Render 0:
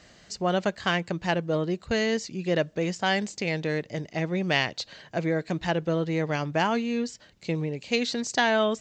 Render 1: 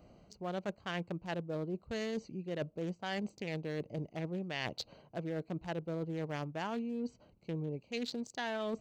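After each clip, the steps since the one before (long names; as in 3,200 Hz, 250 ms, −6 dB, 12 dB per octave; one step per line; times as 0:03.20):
adaptive Wiener filter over 25 samples
high-shelf EQ 7,200 Hz +5 dB
reversed playback
downward compressor 6 to 1, threshold −34 dBFS, peak gain reduction 15 dB
reversed playback
level −1.5 dB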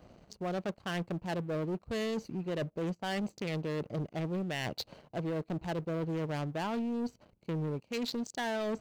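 leveller curve on the samples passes 2
in parallel at −9 dB: wave folding −31.5 dBFS
on the sum: level −4 dB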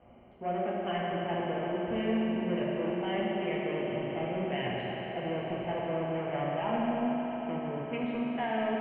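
Chebyshev low-pass with heavy ripple 3,100 Hz, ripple 6 dB
echo that builds up and dies away 116 ms, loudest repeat 5, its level −17.5 dB
convolution reverb RT60 3.9 s, pre-delay 4 ms, DRR −6 dB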